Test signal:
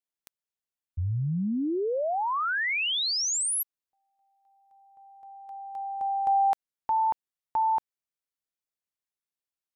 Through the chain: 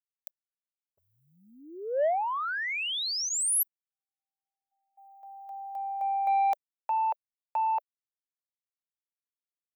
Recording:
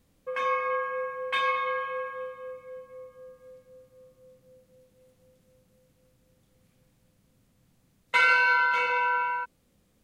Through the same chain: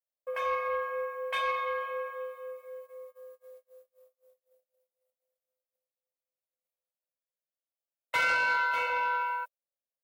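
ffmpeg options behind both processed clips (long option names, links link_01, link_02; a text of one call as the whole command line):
ffmpeg -i in.wav -af "aemphasis=mode=production:type=riaa,agate=range=-33dB:threshold=-53dB:ratio=3:release=21:detection=rms,highpass=frequency=600:width_type=q:width=4.9,equalizer=frequency=7500:width=0.46:gain=-7.5,bandreject=frequency=6400:width=26,asoftclip=type=tanh:threshold=-14.5dB,volume=-5.5dB" out.wav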